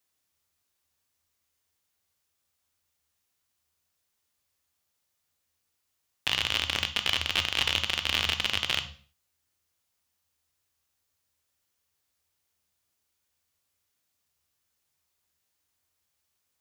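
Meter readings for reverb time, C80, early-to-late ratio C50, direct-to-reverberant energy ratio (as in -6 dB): 0.45 s, 17.5 dB, 12.5 dB, 8.0 dB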